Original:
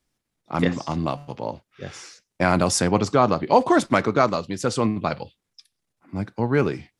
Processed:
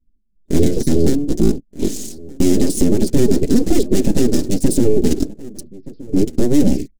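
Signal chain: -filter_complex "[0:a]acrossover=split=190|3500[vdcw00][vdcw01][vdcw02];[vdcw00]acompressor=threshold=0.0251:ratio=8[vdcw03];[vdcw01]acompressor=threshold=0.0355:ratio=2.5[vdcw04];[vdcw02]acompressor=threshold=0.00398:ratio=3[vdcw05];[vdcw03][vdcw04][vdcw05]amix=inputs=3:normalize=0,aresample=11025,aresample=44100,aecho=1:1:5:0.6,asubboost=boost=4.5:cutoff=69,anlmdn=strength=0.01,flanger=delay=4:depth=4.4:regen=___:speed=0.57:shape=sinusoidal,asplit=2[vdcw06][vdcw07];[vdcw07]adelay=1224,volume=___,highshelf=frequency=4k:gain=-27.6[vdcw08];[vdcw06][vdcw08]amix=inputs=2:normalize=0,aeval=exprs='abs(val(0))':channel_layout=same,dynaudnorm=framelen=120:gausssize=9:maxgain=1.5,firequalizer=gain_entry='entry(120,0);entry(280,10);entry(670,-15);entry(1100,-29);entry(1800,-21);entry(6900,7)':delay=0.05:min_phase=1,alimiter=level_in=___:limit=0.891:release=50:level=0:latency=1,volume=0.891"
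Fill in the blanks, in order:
-4, 0.0794, 10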